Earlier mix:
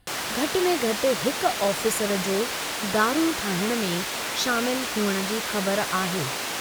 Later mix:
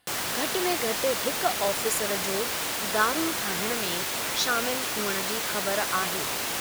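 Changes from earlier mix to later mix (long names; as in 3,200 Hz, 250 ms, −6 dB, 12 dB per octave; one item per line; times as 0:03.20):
background: remove meter weighting curve A
master: add high-pass filter 660 Hz 6 dB per octave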